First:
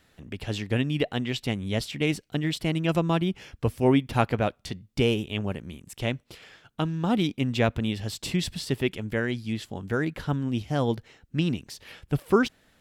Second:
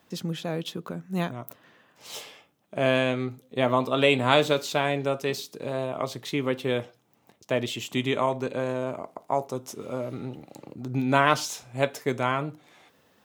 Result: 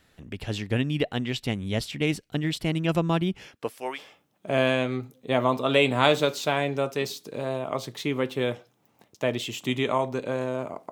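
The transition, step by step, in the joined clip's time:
first
3.47–4 HPF 190 Hz -> 1400 Hz
3.97 switch to second from 2.25 s, crossfade 0.06 s

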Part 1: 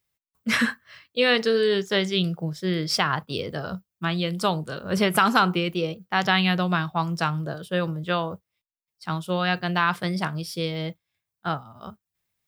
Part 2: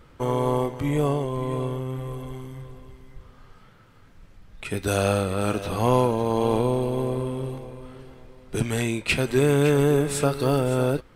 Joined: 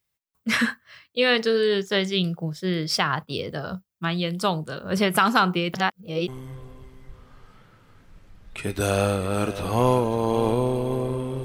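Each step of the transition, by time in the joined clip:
part 1
5.74–6.28 reverse
6.28 switch to part 2 from 2.35 s

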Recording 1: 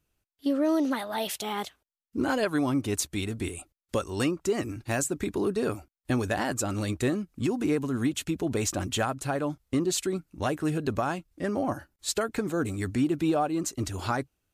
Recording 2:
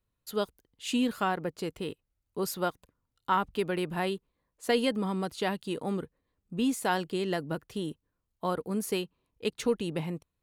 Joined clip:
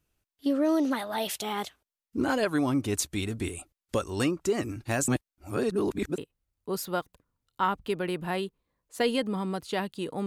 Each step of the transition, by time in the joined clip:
recording 1
5.08–6.18 reverse
6.18 switch to recording 2 from 1.87 s

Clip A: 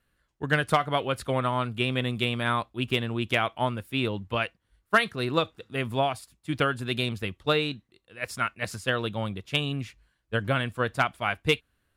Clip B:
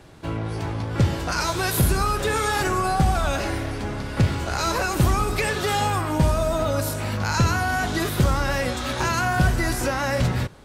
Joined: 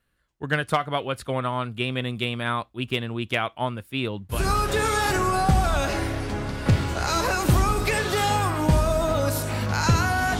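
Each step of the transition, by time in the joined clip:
clip A
4.38 switch to clip B from 1.89 s, crossfade 0.18 s

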